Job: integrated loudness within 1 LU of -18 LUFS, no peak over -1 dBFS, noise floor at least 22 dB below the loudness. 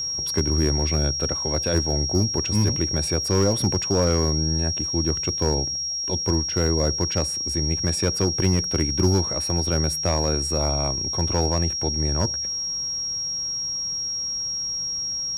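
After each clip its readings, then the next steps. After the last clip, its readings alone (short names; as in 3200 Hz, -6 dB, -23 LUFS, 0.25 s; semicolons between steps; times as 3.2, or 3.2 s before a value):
clipped 0.4%; flat tops at -12.5 dBFS; steady tone 5600 Hz; tone level -25 dBFS; loudness -22.5 LUFS; peak -12.5 dBFS; loudness target -18.0 LUFS
-> clip repair -12.5 dBFS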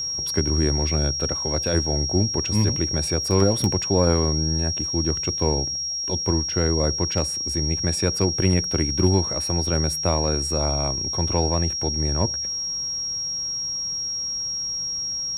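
clipped 0.0%; steady tone 5600 Hz; tone level -25 dBFS
-> notch 5600 Hz, Q 30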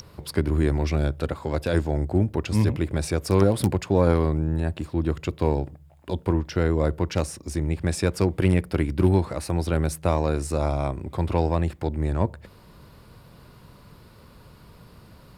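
steady tone none; loudness -24.5 LUFS; peak -5.0 dBFS; loudness target -18.0 LUFS
-> gain +6.5 dB; limiter -1 dBFS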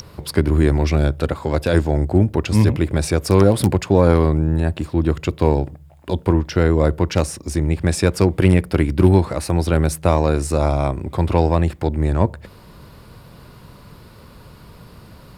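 loudness -18.5 LUFS; peak -1.0 dBFS; noise floor -44 dBFS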